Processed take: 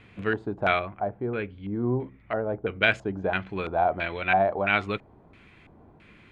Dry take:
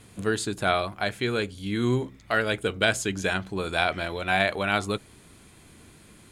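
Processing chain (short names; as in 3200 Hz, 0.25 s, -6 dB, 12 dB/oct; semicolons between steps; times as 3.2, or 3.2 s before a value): LFO low-pass square 1.5 Hz 800–2400 Hz; 0.79–2.83 tape spacing loss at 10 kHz 37 dB; gain -2 dB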